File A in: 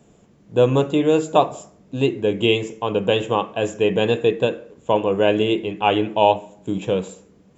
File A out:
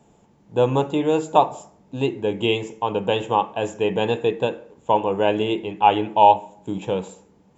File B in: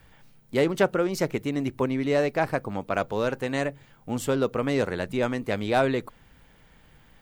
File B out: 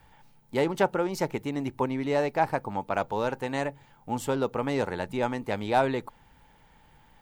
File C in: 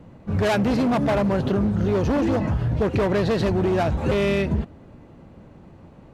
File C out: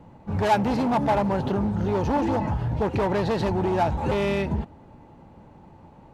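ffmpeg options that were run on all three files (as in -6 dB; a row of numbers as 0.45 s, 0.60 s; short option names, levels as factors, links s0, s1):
-af "equalizer=f=870:w=5:g=12.5,volume=0.668"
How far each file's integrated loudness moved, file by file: -1.0 LU, -2.5 LU, -2.5 LU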